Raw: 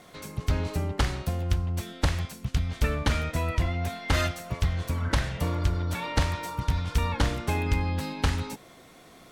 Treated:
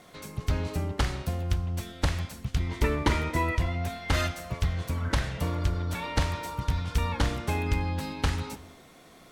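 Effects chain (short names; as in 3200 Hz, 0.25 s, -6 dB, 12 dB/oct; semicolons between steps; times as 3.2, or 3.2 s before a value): 2.59–3.55 small resonant body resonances 360/950/2000 Hz, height 16 dB -> 12 dB, ringing for 40 ms; on a send: reverb, pre-delay 5 ms, DRR 17 dB; on the sum: gain -1.5 dB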